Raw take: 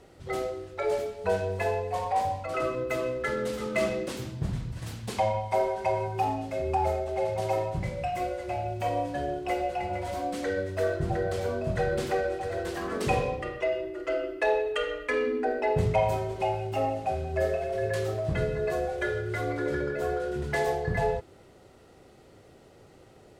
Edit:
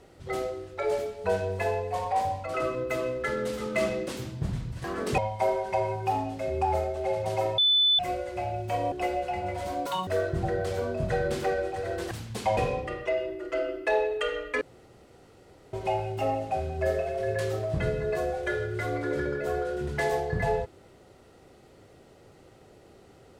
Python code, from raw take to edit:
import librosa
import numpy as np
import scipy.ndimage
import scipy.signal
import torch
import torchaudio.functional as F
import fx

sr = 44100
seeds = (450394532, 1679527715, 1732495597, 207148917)

y = fx.edit(x, sr, fx.swap(start_s=4.84, length_s=0.46, other_s=12.78, other_length_s=0.34),
    fx.bleep(start_s=7.7, length_s=0.41, hz=3500.0, db=-18.5),
    fx.cut(start_s=9.04, length_s=0.35),
    fx.speed_span(start_s=10.33, length_s=0.41, speed=1.94),
    fx.room_tone_fill(start_s=15.16, length_s=1.12), tone=tone)